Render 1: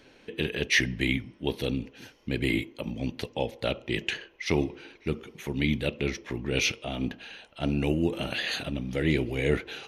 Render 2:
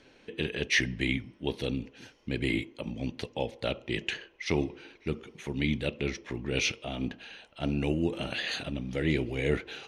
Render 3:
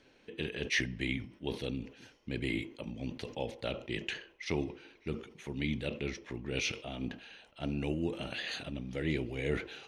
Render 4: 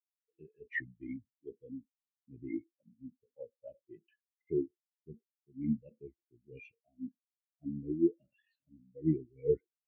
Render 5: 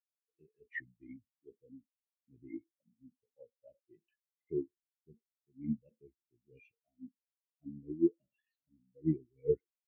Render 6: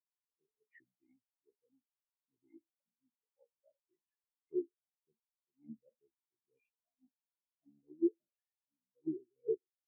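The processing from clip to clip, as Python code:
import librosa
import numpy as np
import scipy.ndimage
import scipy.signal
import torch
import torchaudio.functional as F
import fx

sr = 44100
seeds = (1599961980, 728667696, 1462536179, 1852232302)

y1 = scipy.signal.sosfilt(scipy.signal.butter(4, 9800.0, 'lowpass', fs=sr, output='sos'), x)
y1 = F.gain(torch.from_numpy(y1), -2.5).numpy()
y2 = fx.sustainer(y1, sr, db_per_s=130.0)
y2 = F.gain(torch.from_numpy(y2), -5.5).numpy()
y3 = fx.spectral_expand(y2, sr, expansion=4.0)
y4 = fx.upward_expand(y3, sr, threshold_db=-43.0, expansion=1.5)
y5 = fx.auto_wah(y4, sr, base_hz=380.0, top_hz=1000.0, q=5.9, full_db=-34.0, direction='down')
y5 = F.gain(torch.from_numpy(y5), 1.5).numpy()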